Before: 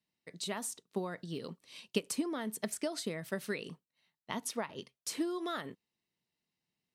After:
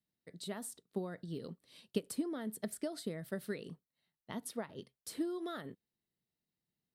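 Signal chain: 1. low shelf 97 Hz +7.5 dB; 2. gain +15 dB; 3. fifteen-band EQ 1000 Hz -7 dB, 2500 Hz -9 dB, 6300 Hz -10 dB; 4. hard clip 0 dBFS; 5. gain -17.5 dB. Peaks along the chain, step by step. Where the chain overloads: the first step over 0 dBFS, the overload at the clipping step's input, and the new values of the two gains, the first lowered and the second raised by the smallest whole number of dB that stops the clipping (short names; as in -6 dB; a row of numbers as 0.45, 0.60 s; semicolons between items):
-16.0, -1.0, -3.5, -3.5, -21.0 dBFS; no overload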